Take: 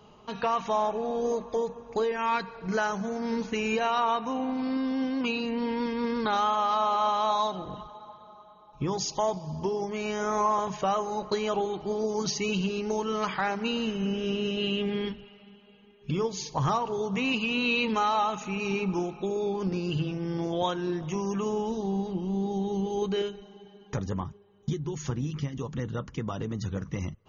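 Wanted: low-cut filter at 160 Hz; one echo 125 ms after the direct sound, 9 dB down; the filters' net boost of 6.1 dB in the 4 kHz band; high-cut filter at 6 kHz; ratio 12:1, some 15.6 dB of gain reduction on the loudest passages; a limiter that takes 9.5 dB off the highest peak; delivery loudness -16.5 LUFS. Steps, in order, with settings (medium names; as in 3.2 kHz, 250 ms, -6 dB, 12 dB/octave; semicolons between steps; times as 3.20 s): high-pass 160 Hz; low-pass 6 kHz; peaking EQ 4 kHz +9 dB; compression 12:1, threshold -37 dBFS; peak limiter -32.5 dBFS; delay 125 ms -9 dB; trim +25 dB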